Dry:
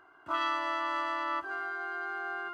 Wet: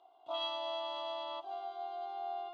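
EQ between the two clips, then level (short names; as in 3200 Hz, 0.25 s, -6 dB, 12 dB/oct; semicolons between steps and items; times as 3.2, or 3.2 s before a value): double band-pass 1600 Hz, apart 2.3 oct; bell 1600 Hz -3 dB 0.77 oct; +8.0 dB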